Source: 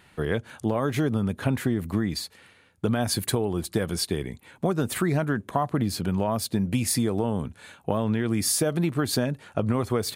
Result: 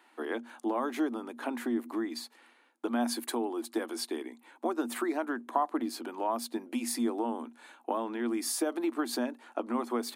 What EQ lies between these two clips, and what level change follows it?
rippled Chebyshev high-pass 230 Hz, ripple 9 dB; 0.0 dB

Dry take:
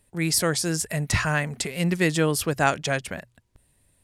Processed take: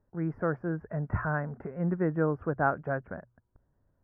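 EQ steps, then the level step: elliptic low-pass 1500 Hz, stop band 60 dB; -4.5 dB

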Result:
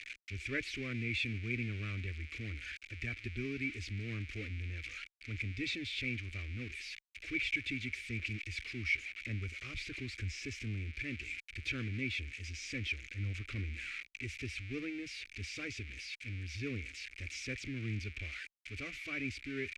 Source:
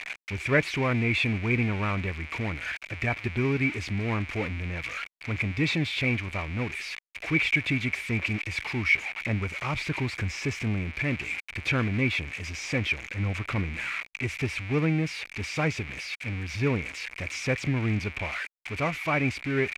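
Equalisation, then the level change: air absorption 51 m; passive tone stack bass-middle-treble 6-0-2; fixed phaser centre 380 Hz, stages 4; +10.5 dB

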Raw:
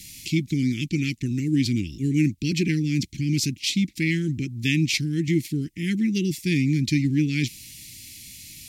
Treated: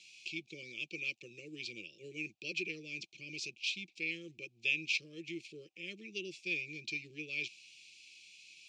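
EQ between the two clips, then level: vowel filter a; speaker cabinet 280–7600 Hz, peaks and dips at 540 Hz +5 dB, 780 Hz +9 dB, 1700 Hz +4 dB; fixed phaser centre 640 Hz, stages 4; +11.0 dB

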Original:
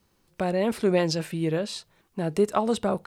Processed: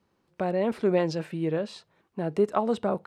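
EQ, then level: HPF 170 Hz 6 dB/oct; LPF 1600 Hz 6 dB/oct; 0.0 dB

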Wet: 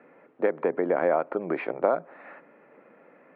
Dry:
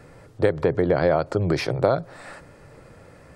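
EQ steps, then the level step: elliptic band-pass 220–2400 Hz, stop band 40 dB; dynamic EQ 990 Hz, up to +4 dB, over -34 dBFS, Q 1.1; -4.5 dB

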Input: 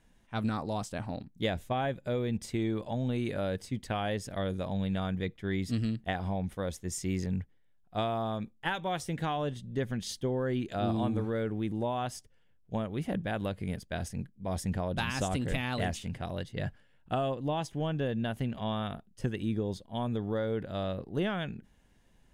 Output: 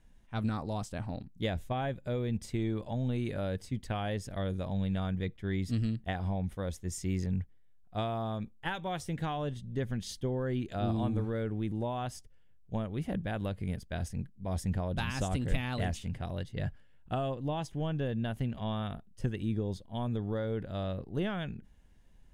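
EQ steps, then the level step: low shelf 100 Hz +11 dB; -3.5 dB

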